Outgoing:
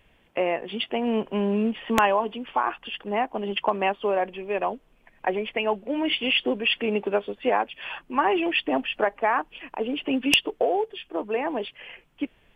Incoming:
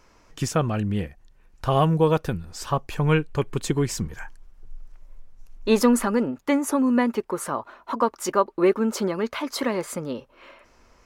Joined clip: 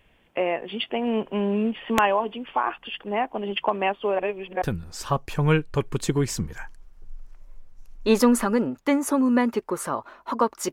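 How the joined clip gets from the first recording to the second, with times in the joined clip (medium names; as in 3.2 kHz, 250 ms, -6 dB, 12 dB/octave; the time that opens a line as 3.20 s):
outgoing
4.19–4.62 s: reverse
4.62 s: go over to incoming from 2.23 s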